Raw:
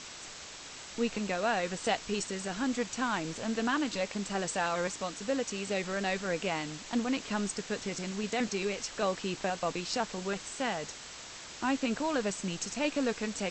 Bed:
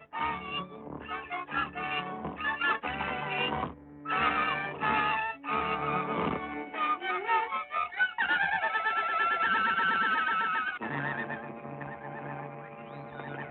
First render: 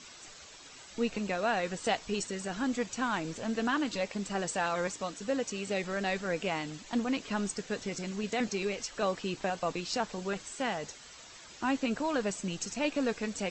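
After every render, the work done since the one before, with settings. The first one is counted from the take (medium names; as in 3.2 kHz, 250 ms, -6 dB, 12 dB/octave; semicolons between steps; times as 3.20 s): noise reduction 9 dB, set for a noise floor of -46 dBFS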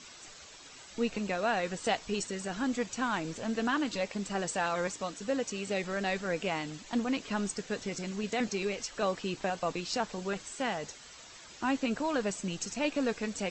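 no audible change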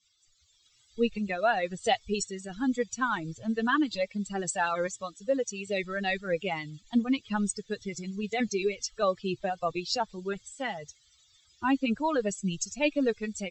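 expander on every frequency bin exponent 2; level rider gain up to 8 dB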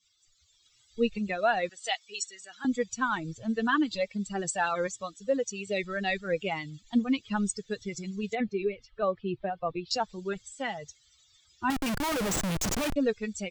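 1.69–2.65 s: high-pass 1.1 kHz; 8.35–9.91 s: distance through air 450 m; 11.70–12.96 s: Schmitt trigger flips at -42.5 dBFS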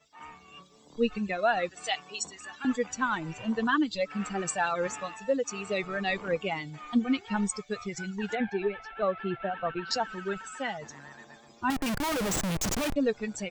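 add bed -15 dB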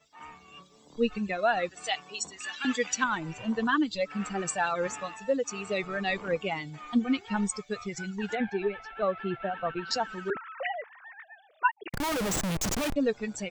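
2.40–3.04 s: frequency weighting D; 10.30–11.94 s: formants replaced by sine waves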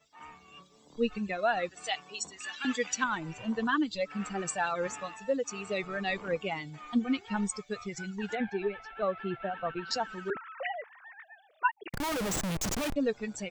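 trim -2.5 dB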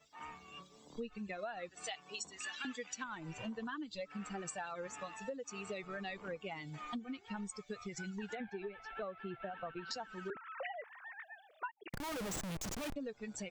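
compression 10:1, threshold -40 dBFS, peak gain reduction 19 dB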